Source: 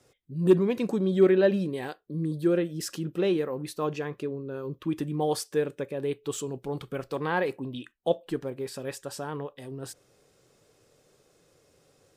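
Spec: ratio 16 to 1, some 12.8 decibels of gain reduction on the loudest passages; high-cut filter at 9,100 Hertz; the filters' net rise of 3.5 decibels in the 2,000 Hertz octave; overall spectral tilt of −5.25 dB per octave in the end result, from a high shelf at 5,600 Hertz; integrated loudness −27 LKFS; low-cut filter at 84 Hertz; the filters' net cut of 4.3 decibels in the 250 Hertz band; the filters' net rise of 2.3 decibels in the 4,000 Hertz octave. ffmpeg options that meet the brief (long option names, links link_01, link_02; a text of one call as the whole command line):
ffmpeg -i in.wav -af "highpass=84,lowpass=9100,equalizer=frequency=250:width_type=o:gain=-7.5,equalizer=frequency=2000:width_type=o:gain=4.5,equalizer=frequency=4000:width_type=o:gain=4.5,highshelf=frequency=5600:gain=-7,acompressor=threshold=-30dB:ratio=16,volume=10dB" out.wav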